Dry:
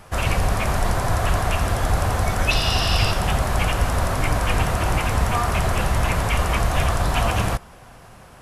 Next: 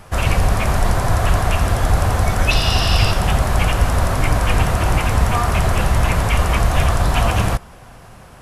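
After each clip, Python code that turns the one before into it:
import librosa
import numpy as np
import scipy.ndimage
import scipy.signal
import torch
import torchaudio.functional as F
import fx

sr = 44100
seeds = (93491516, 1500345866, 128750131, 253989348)

y = fx.low_shelf(x, sr, hz=200.0, db=3.0)
y = y * librosa.db_to_amplitude(2.5)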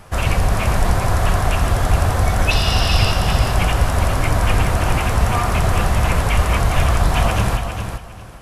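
y = fx.echo_feedback(x, sr, ms=406, feedback_pct=21, wet_db=-7.5)
y = y * librosa.db_to_amplitude(-1.0)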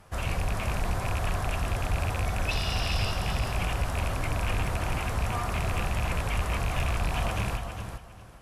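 y = fx.rattle_buzz(x, sr, strikes_db=-14.0, level_db=-10.0)
y = fx.cheby_harmonics(y, sr, harmonics=(3,), levels_db=(-15,), full_scale_db=-0.5)
y = 10.0 ** (-14.5 / 20.0) * np.tanh(y / 10.0 ** (-14.5 / 20.0))
y = y * librosa.db_to_amplitude(-5.0)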